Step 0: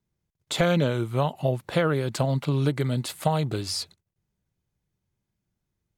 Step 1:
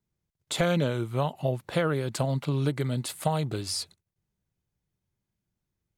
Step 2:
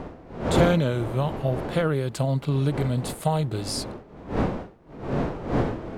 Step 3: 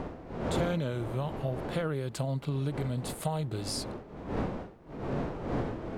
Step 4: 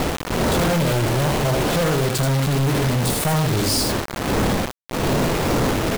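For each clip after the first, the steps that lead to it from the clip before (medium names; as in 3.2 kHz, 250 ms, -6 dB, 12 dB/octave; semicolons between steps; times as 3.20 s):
dynamic bell 9.6 kHz, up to +5 dB, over -50 dBFS, Q 1.4; trim -3 dB
wind noise 490 Hz -31 dBFS; harmonic-percussive split harmonic +6 dB; trim -2 dB
compression 2:1, threshold -35 dBFS, peak gain reduction 11.5 dB
delay 82 ms -6 dB; companded quantiser 2-bit; trim +7.5 dB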